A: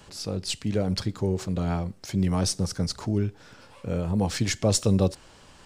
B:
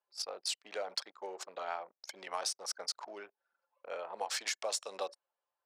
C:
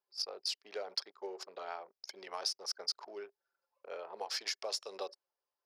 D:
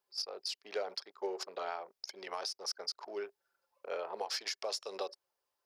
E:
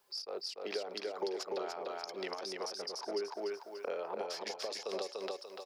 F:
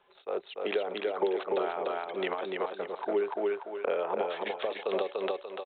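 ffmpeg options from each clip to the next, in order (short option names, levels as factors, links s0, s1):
-af "anlmdn=3.98,highpass=f=660:w=0.5412,highpass=f=660:w=1.3066,acompressor=threshold=0.0251:ratio=16"
-af "equalizer=f=400:t=o:w=0.33:g=10,equalizer=f=5000:t=o:w=0.33:g=10,equalizer=f=8000:t=o:w=0.33:g=-10,volume=0.596"
-af "alimiter=level_in=2.37:limit=0.0631:level=0:latency=1:release=255,volume=0.422,volume=1.88"
-filter_complex "[0:a]acompressor=threshold=0.00708:ratio=6,asplit=2[s0][s1];[s1]aecho=0:1:292|584|876|1168:0.708|0.198|0.0555|0.0155[s2];[s0][s2]amix=inputs=2:normalize=0,acrossover=split=400[s3][s4];[s4]acompressor=threshold=0.00224:ratio=6[s5];[s3][s5]amix=inputs=2:normalize=0,volume=4.47"
-af "aresample=8000,aresample=44100,volume=2.66"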